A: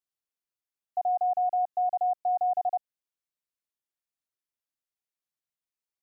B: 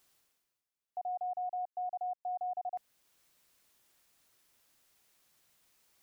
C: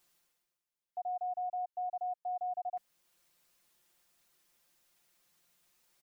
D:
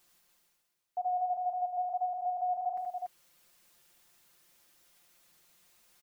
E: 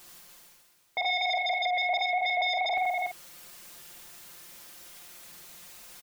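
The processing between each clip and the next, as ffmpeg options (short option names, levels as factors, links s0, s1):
-af "alimiter=level_in=2.66:limit=0.0631:level=0:latency=1:release=456,volume=0.376,areverse,acompressor=mode=upward:threshold=0.00251:ratio=2.5,areverse"
-af "aecho=1:1:5.7:0.69,volume=0.668"
-af "aecho=1:1:50|76|249|287:0.15|0.531|0.106|0.631,volume=1.68"
-filter_complex "[0:a]aeval=exprs='0.0531*sin(PI/2*3.98*val(0)/0.0531)':c=same,asplit=2[s0][s1];[s1]adelay=50,volume=0.376[s2];[s0][s2]amix=inputs=2:normalize=0"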